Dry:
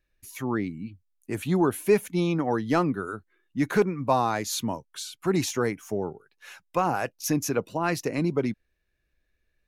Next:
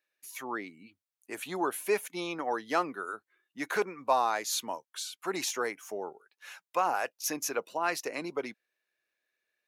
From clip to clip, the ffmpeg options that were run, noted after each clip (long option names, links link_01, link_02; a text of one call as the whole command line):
ffmpeg -i in.wav -af "highpass=560,volume=-1.5dB" out.wav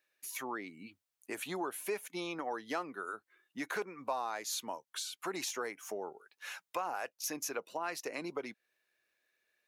ffmpeg -i in.wav -af "acompressor=threshold=-43dB:ratio=2.5,volume=3.5dB" out.wav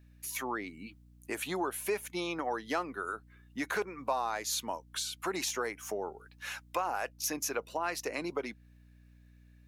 ffmpeg -i in.wav -af "aeval=exprs='val(0)+0.000891*(sin(2*PI*60*n/s)+sin(2*PI*2*60*n/s)/2+sin(2*PI*3*60*n/s)/3+sin(2*PI*4*60*n/s)/4+sin(2*PI*5*60*n/s)/5)':channel_layout=same,volume=4dB" out.wav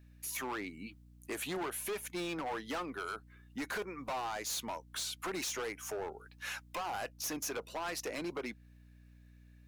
ffmpeg -i in.wav -af "volume=34.5dB,asoftclip=hard,volume=-34.5dB" out.wav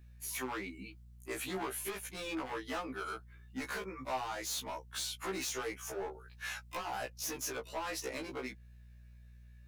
ffmpeg -i in.wav -af "afftfilt=real='re*1.73*eq(mod(b,3),0)':imag='im*1.73*eq(mod(b,3),0)':win_size=2048:overlap=0.75,volume=2dB" out.wav